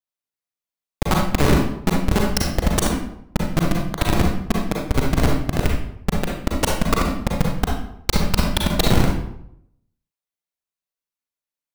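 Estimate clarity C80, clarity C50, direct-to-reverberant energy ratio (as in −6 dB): 6.0 dB, 0.5 dB, −1.5 dB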